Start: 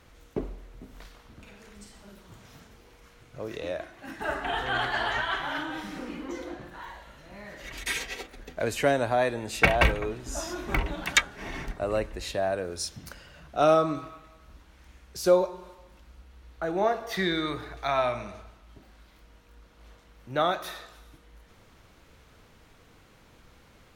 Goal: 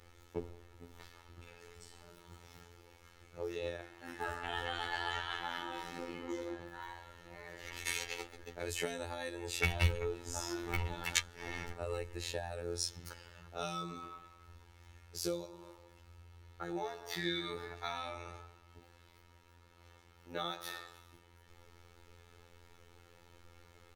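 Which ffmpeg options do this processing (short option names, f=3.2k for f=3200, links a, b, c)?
-filter_complex "[0:a]acrossover=split=180|3000[a][b][c];[b]acompressor=threshold=-33dB:ratio=6[d];[a][d][c]amix=inputs=3:normalize=0,aecho=1:1:2.3:0.6,afftfilt=real='hypot(re,im)*cos(PI*b)':imag='0':win_size=2048:overlap=0.75,volume=-2.5dB"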